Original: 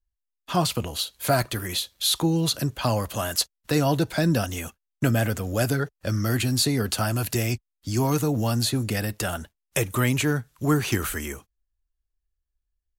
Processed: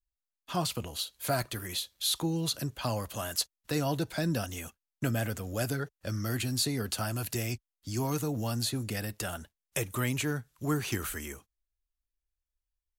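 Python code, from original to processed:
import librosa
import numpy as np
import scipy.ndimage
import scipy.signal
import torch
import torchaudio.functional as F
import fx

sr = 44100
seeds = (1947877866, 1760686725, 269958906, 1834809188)

y = fx.peak_eq(x, sr, hz=14000.0, db=2.5, octaves=2.7)
y = F.gain(torch.from_numpy(y), -8.5).numpy()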